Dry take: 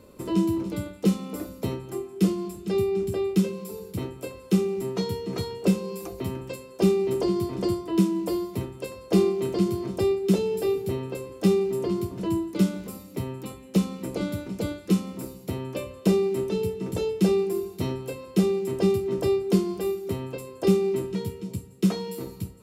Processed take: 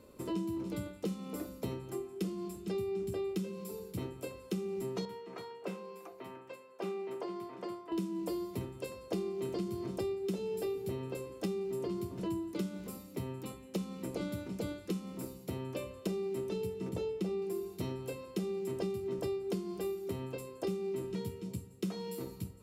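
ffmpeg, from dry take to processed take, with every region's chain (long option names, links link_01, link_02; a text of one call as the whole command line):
ffmpeg -i in.wav -filter_complex "[0:a]asettb=1/sr,asplit=3[link_01][link_02][link_03];[link_01]atrim=end=5.054[link_04];[link_02]atrim=start=5.05:end=7.92,asetpts=PTS-STARTPTS,afade=type=in:duration=0.004:curve=qsin,afade=type=out:start_time=2.866:duration=0.004:curve=qsin,highpass=190,acrossover=split=600 2500:gain=0.251 1 0.2[link_05][link_06][link_07];[link_05][link_06][link_07]amix=inputs=3:normalize=0[link_08];[link_03]atrim=start=7.916[link_09];[link_04][link_08]acrossfade=duration=0.004:curve1=hsin:curve2=qsin[link_10];[link_10][link_09]acrossfade=duration=0.004:curve1=qsin:curve2=hsin,asettb=1/sr,asplit=3[link_11][link_12][link_13];[link_11]atrim=end=16.894[link_14];[link_12]atrim=start=16.89:end=17.42,asetpts=PTS-STARTPTS,afade=type=in:duration=0.004:curve=qsin,afade=type=out:start_time=0.526:duration=0.004:curve=qsin,highshelf=frequency=4000:gain=-8,bandreject=frequency=1600:width=16[link_15];[link_13]atrim=start=17.416[link_16];[link_14][link_15]acrossfade=duration=0.004:curve1=hsin:curve2=qsin[link_17];[link_17][link_16]acrossfade=duration=0.004:curve1=qsin:curve2=hsin,bandreject=frequency=50:width_type=h:width=6,bandreject=frequency=100:width_type=h:width=6,bandreject=frequency=150:width_type=h:width=6,bandreject=frequency=200:width_type=h:width=6,acompressor=threshold=-27dB:ratio=6,volume=-6dB" out.wav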